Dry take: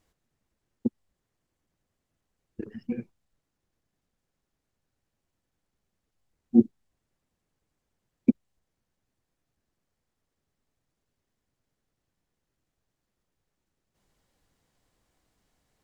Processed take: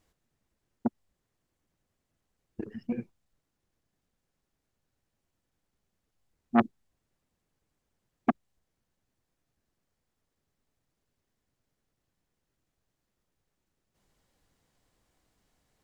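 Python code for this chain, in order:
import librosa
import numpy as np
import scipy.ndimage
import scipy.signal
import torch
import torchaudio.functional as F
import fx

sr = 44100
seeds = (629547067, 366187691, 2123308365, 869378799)

y = fx.transformer_sat(x, sr, knee_hz=960.0)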